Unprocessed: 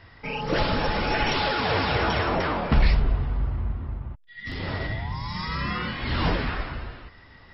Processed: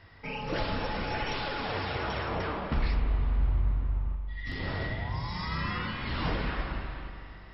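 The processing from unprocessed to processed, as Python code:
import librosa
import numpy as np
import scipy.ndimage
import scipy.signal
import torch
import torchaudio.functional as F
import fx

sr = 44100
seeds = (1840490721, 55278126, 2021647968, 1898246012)

y = fx.rider(x, sr, range_db=3, speed_s=0.5)
y = fx.rev_spring(y, sr, rt60_s=2.9, pass_ms=(31, 42), chirp_ms=40, drr_db=5.0)
y = F.gain(torch.from_numpy(y), -7.5).numpy()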